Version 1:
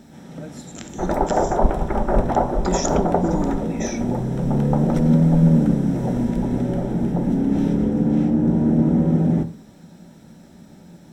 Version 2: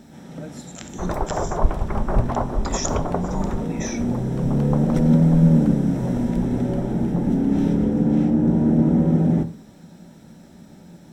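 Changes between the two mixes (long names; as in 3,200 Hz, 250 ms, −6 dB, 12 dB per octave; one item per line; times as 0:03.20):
speech: add linear-phase brick-wall high-pass 540 Hz
second sound: send off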